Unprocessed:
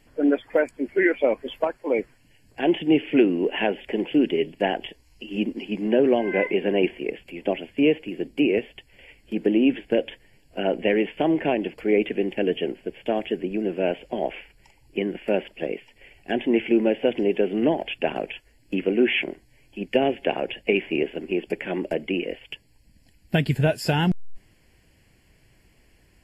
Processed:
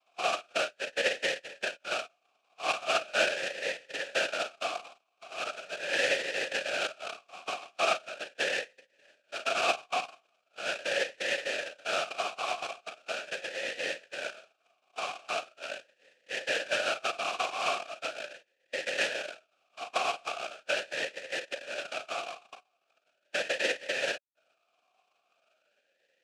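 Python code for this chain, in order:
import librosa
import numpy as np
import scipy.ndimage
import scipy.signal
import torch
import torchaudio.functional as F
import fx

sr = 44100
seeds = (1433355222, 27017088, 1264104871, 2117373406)

p1 = fx.spec_topn(x, sr, count=32)
p2 = p1 + fx.room_early_taps(p1, sr, ms=(36, 51), db=(-9.0, -14.5), dry=0)
p3 = fx.noise_vocoder(p2, sr, seeds[0], bands=1)
p4 = fx.vowel_sweep(p3, sr, vowels='a-e', hz=0.4)
y = p4 * 10.0 ** (4.5 / 20.0)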